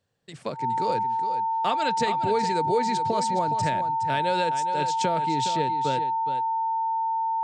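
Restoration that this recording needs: band-stop 900 Hz, Q 30; inverse comb 415 ms -10 dB

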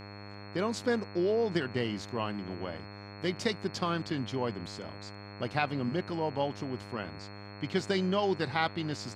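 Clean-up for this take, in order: de-hum 101.3 Hz, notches 26; band-stop 4.3 kHz, Q 30

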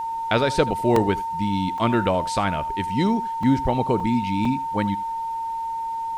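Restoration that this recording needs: band-stop 910 Hz, Q 30; interpolate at 0.96/1.78/3.43/4.00/4.45 s, 3.4 ms; expander -20 dBFS, range -21 dB; inverse comb 80 ms -19 dB

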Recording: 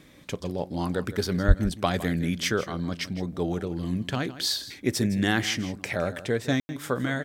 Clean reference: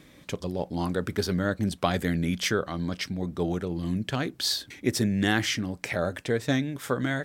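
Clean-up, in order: 1.47–1.59 s: high-pass 140 Hz 24 dB/octave; room tone fill 6.60–6.69 s; inverse comb 161 ms -15 dB

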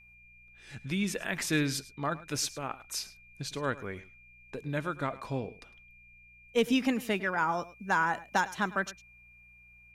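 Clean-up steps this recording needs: clip repair -16 dBFS; de-hum 60.3 Hz, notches 3; band-stop 2.4 kHz, Q 30; inverse comb 105 ms -18 dB

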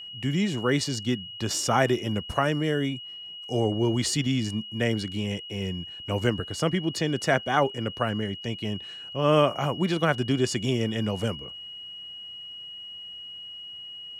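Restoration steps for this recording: band-stop 2.9 kHz, Q 30

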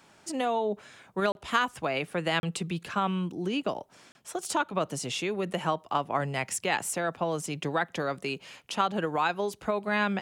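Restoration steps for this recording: interpolate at 1.32/2.40/4.12 s, 31 ms

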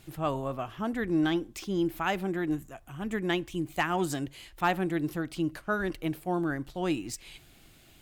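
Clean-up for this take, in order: clip repair -16 dBFS

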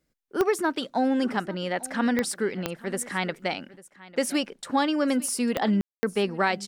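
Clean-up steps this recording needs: de-click; room tone fill 5.81–6.03 s; inverse comb 847 ms -19.5 dB

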